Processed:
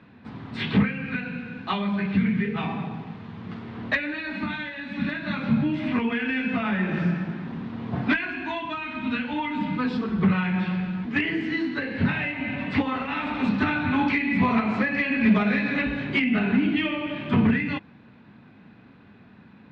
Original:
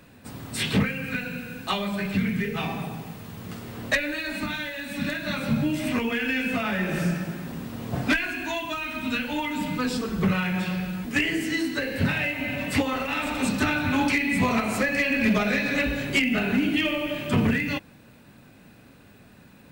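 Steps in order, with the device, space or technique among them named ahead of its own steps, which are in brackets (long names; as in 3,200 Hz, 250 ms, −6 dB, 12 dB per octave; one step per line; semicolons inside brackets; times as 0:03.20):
guitar cabinet (loudspeaker in its box 76–3,500 Hz, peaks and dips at 210 Hz +5 dB, 560 Hz −6 dB, 980 Hz +3 dB, 2,800 Hz −4 dB)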